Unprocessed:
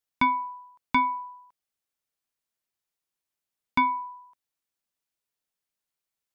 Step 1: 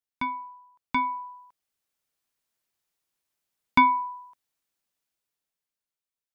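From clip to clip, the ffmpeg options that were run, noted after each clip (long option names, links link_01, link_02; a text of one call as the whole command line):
ffmpeg -i in.wav -af "dynaudnorm=framelen=290:gausssize=9:maxgain=14dB,volume=-7.5dB" out.wav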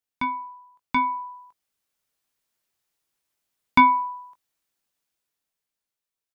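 ffmpeg -i in.wav -filter_complex "[0:a]asplit=2[link_01][link_02];[link_02]adelay=20,volume=-11dB[link_03];[link_01][link_03]amix=inputs=2:normalize=0,volume=2.5dB" out.wav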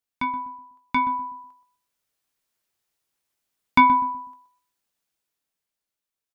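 ffmpeg -i in.wav -filter_complex "[0:a]asplit=2[link_01][link_02];[link_02]adelay=124,lowpass=frequency=870:poles=1,volume=-9dB,asplit=2[link_03][link_04];[link_04]adelay=124,lowpass=frequency=870:poles=1,volume=0.33,asplit=2[link_05][link_06];[link_06]adelay=124,lowpass=frequency=870:poles=1,volume=0.33,asplit=2[link_07][link_08];[link_08]adelay=124,lowpass=frequency=870:poles=1,volume=0.33[link_09];[link_01][link_03][link_05][link_07][link_09]amix=inputs=5:normalize=0" out.wav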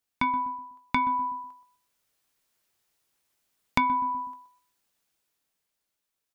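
ffmpeg -i in.wav -af "acompressor=threshold=-27dB:ratio=6,volume=4dB" out.wav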